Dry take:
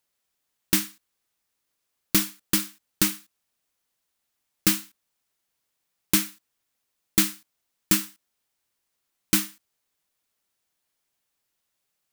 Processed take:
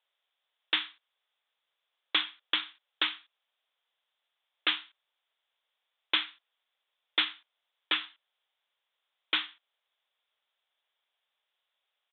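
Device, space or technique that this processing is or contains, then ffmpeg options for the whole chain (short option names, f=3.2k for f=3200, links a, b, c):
musical greeting card: -af "aresample=8000,aresample=44100,highpass=f=520:w=0.5412,highpass=f=520:w=1.3066,equalizer=f=3.4k:t=o:w=0.32:g=8.5"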